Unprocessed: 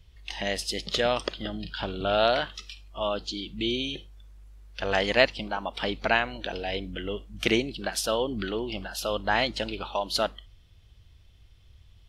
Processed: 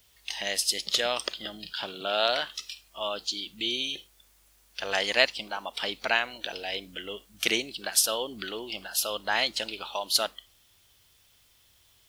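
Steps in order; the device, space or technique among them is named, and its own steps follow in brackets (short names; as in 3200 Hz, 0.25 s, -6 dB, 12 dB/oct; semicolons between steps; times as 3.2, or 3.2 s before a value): turntable without a phono preamp (RIAA curve recording; white noise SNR 34 dB); 1.72–2.27 HPF 81 Hz -> 190 Hz 24 dB/oct; gain -3 dB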